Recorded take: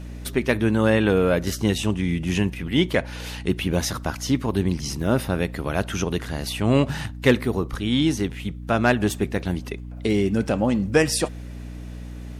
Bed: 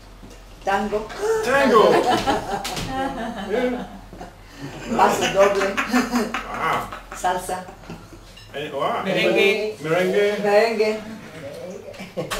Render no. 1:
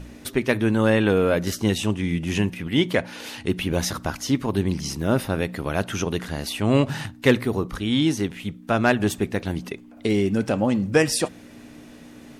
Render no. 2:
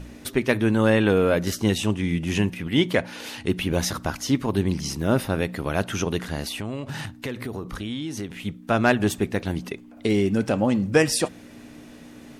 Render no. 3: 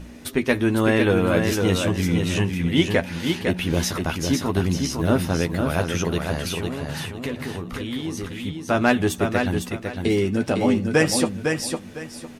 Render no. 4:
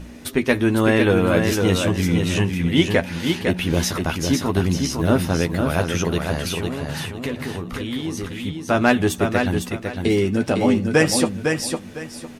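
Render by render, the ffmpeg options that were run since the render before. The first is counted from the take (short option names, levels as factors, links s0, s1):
-af "bandreject=f=60:t=h:w=4,bandreject=f=120:t=h:w=4,bandreject=f=180:t=h:w=4"
-filter_complex "[0:a]asettb=1/sr,asplit=3[s0][s1][s2];[s0]atrim=end=6.454[s3];[s1]atrim=start=6.45:end=8.35,asetpts=PTS-STARTPTS,afade=t=in:d=0.004:c=qsin,afade=t=out:st=1.896:d=0.004:c=qsin,acompressor=threshold=0.0447:ratio=8:attack=3.2:release=140:knee=1:detection=peak[s4];[s2]atrim=start=8.346[s5];[s3][s4]acrossfade=d=0.004:c1=hsin:c2=qsin[s6];[s6][s5]acrossfade=d=0.004:c1=qsin:c2=hsin"
-filter_complex "[0:a]asplit=2[s0][s1];[s1]adelay=12,volume=0.447[s2];[s0][s2]amix=inputs=2:normalize=0,aecho=1:1:505|1010|1515:0.562|0.146|0.038"
-af "volume=1.26"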